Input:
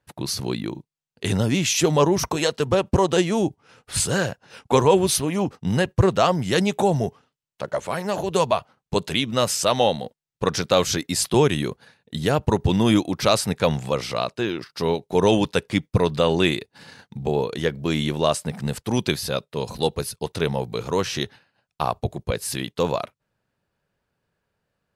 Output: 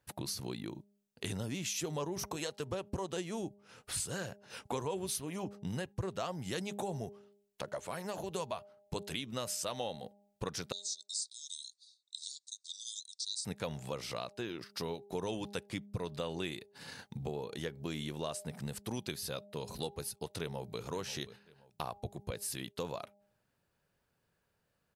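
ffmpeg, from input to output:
-filter_complex "[0:a]asettb=1/sr,asplit=3[a][b][c];[a]atrim=end=10.724[d];[b]atrim=start=10.72:end=13.45,asetpts=PTS-STARTPTS,afade=t=in:d=0.004:c=qsin,afade=t=out:st=2.726:d=0.004:c=qsin,asuperpass=centerf=5900:order=20:qfactor=1.1[e];[c]atrim=start=13.446[f];[d][e]acrossfade=d=0.004:c1=hsin:c2=qsin[g];[g][f]acrossfade=d=0.004:c1=qsin:c2=hsin,asplit=2[h][i];[i]afade=t=in:st=20.38:d=0.01,afade=t=out:st=20.83:d=0.01,aecho=0:1:530|1060:0.16788|0.016788[j];[h][j]amix=inputs=2:normalize=0,highshelf=f=6.7k:g=8,bandreject=f=202.7:t=h:w=4,bandreject=f=405.4:t=h:w=4,bandreject=f=608.1:t=h:w=4,bandreject=f=810.8:t=h:w=4,acompressor=threshold=-37dB:ratio=3,volume=-3.5dB"

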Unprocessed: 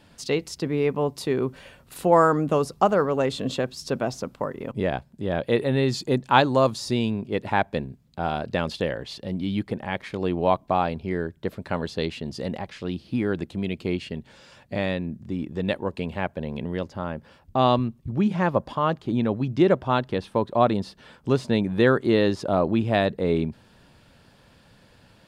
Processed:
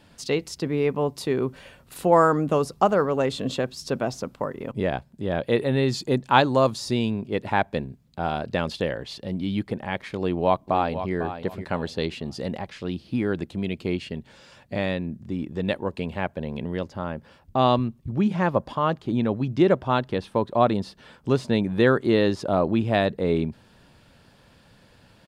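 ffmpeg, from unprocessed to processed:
-filter_complex "[0:a]asplit=2[a][b];[b]afade=t=in:st=10.17:d=0.01,afade=t=out:st=11.14:d=0.01,aecho=0:1:500|1000|1500:0.298538|0.0746346|0.0186586[c];[a][c]amix=inputs=2:normalize=0"

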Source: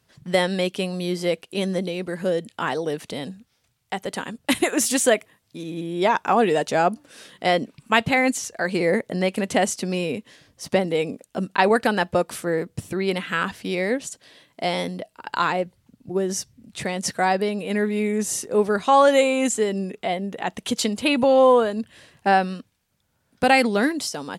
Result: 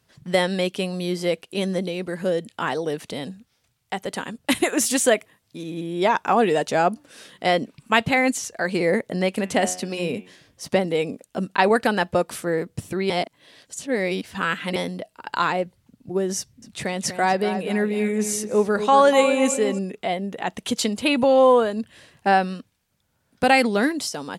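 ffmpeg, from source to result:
-filter_complex "[0:a]asettb=1/sr,asplit=3[a][b][c];[a]atrim=end=9.414[d];[b]atrim=start=9.41:end=10.68,asetpts=PTS-STARTPTS,afade=t=in:d=0.004:c=qsin,afade=t=out:st=1.266:d=0.004:c=qsin,bandreject=f=91.14:t=h:w=4,bandreject=f=182.28:t=h:w=4,bandreject=f=273.42:t=h:w=4,bandreject=f=364.56:t=h:w=4,bandreject=f=455.7:t=h:w=4,bandreject=f=546.84:t=h:w=4,bandreject=f=637.98:t=h:w=4,bandreject=f=729.12:t=h:w=4,bandreject=f=820.26:t=h:w=4,bandreject=f=911.4:t=h:w=4,bandreject=f=1.00254k:t=h:w=4,bandreject=f=1.09368k:t=h:w=4,bandreject=f=1.18482k:t=h:w=4,bandreject=f=1.27596k:t=h:w=4,bandreject=f=1.3671k:t=h:w=4,bandreject=f=1.45824k:t=h:w=4,bandreject=f=1.54938k:t=h:w=4,bandreject=f=1.64052k:t=h:w=4,bandreject=f=1.73166k:t=h:w=4,bandreject=f=1.8228k:t=h:w=4,bandreject=f=1.91394k:t=h:w=4,bandreject=f=2.00508k:t=h:w=4,bandreject=f=2.09622k:t=h:w=4,bandreject=f=2.18736k:t=h:w=4,bandreject=f=2.2785k:t=h:w=4,bandreject=f=2.36964k:t=h:w=4,bandreject=f=2.46078k:t=h:w=4,bandreject=f=2.55192k:t=h:w=4,bandreject=f=2.64306k:t=h:w=4,bandreject=f=2.7342k:t=h:w=4,bandreject=f=2.82534k:t=h:w=4,bandreject=f=2.91648k:t=h:w=4,bandreject=f=3.00762k:t=h:w=4,bandreject=f=3.09876k:t=h:w=4,bandreject=f=3.1899k:t=h:w=4,bandreject=f=3.28104k:t=h:w=4,bandreject=f=3.37218k:t=h:w=4,bandreject=f=3.46332k:t=h:w=4,bandreject=f=3.55446k:t=h:w=4,bandreject=f=3.6456k:t=h:w=4[e];[c]atrim=start=10.676[f];[d][e]acrossfade=d=0.004:c1=hsin:c2=qsin[g];[g][f]acrossfade=d=0.004:c1=qsin:c2=hsin,asettb=1/sr,asplit=3[h][i][j];[h]atrim=end=16.384[k];[i]atrim=start=16.38:end=19.79,asetpts=PTS-STARTPTS,afade=t=in:d=0.004:c=qsin,afade=t=out:st=3.406:d=0.004:c=qsin,asplit=2[l][m];[m]adelay=242,lowpass=f=2k:p=1,volume=-9dB,asplit=2[n][o];[o]adelay=242,lowpass=f=2k:p=1,volume=0.38,asplit=2[p][q];[q]adelay=242,lowpass=f=2k:p=1,volume=0.38,asplit=2[r][s];[s]adelay=242,lowpass=f=2k:p=1,volume=0.38[t];[l][n][p][r][t]amix=inputs=5:normalize=0,atrim=end_sample=150381[u];[j]atrim=start=19.786[v];[k][u]acrossfade=d=0.004:c1=hsin:c2=qsin[w];[w][v]acrossfade=d=0.004:c1=qsin:c2=hsin,asplit=3[x][y][z];[x]atrim=end=13.102[aa];[y]atrim=start=13.098:end=14.762,asetpts=PTS-STARTPTS,areverse[ab];[z]atrim=start=14.758[ac];[aa][ab]acrossfade=d=0.004:c1=hsin:c2=hsin[ad];[ad][ac]acrossfade=d=0.004:c1=hsin:c2=hsin"

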